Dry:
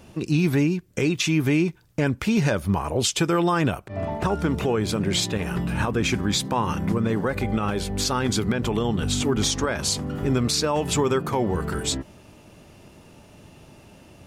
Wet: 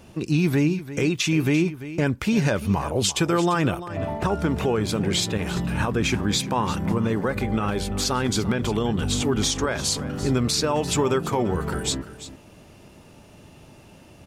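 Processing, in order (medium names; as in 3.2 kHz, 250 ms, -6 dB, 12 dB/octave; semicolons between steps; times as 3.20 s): delay 343 ms -14 dB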